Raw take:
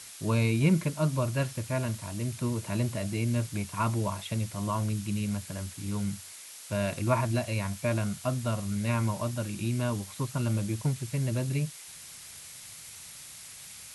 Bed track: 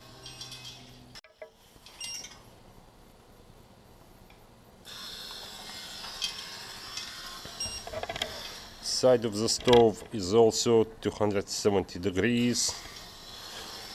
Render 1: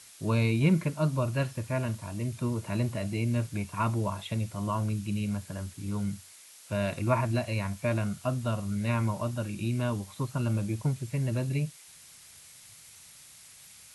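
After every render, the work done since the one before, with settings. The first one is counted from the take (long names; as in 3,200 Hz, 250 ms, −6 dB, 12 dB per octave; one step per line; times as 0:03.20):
noise reduction from a noise print 6 dB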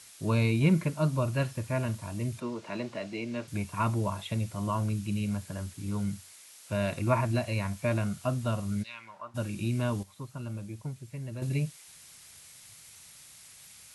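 0:02.40–0:03.48: three-way crossover with the lows and the highs turned down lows −22 dB, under 220 Hz, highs −22 dB, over 6,500 Hz
0:08.82–0:09.34: resonant band-pass 4,600 Hz → 940 Hz, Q 2.5
0:10.03–0:11.42: clip gain −9 dB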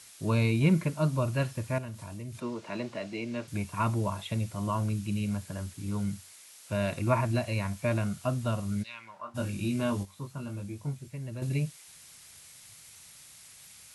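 0:01.78–0:02.35: downward compressor 3 to 1, threshold −38 dBFS
0:09.21–0:11.08: double-tracking delay 21 ms −4 dB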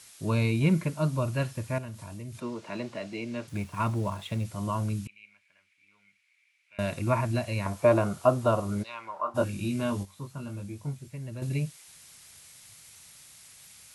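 0:03.49–0:04.45: slack as between gear wheels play −47 dBFS
0:05.07–0:06.79: resonant band-pass 2,300 Hz, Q 10
0:07.66–0:09.44: flat-topped bell 630 Hz +11 dB 2.4 octaves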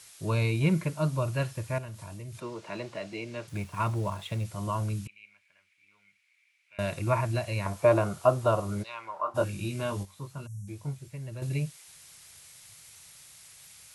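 parametric band 240 Hz −10 dB 0.34 octaves
0:10.47–0:10.67: time-frequency box erased 200–5,400 Hz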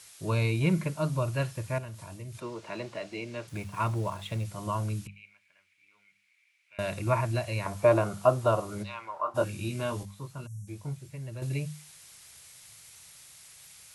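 mains-hum notches 50/100/150/200 Hz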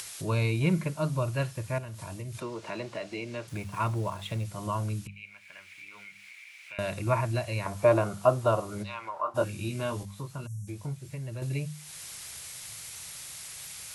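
upward compression, threshold −32 dBFS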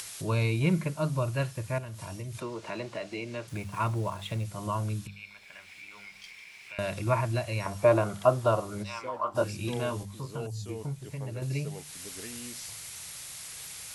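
mix in bed track −18.5 dB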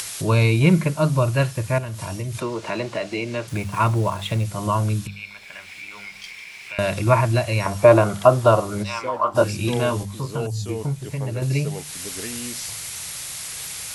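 level +10 dB
brickwall limiter −1 dBFS, peak gain reduction 2.5 dB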